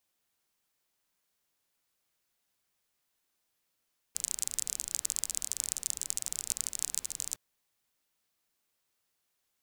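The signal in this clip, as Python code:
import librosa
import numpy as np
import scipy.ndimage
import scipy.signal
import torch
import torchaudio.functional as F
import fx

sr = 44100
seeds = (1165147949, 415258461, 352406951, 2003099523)

y = fx.rain(sr, seeds[0], length_s=3.21, drops_per_s=32.0, hz=7500.0, bed_db=-19.5)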